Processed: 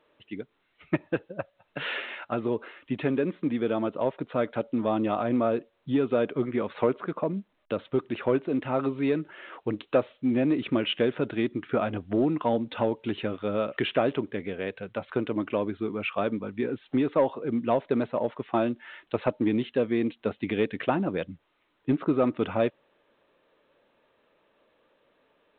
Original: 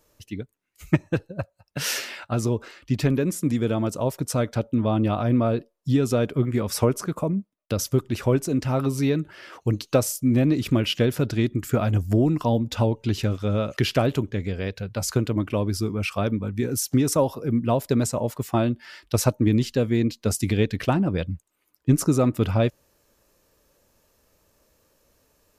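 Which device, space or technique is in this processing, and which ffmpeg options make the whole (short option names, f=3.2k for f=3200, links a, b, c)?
telephone: -af "highpass=270,lowpass=3.1k,asoftclip=type=tanh:threshold=-12dB" -ar 8000 -c:a pcm_alaw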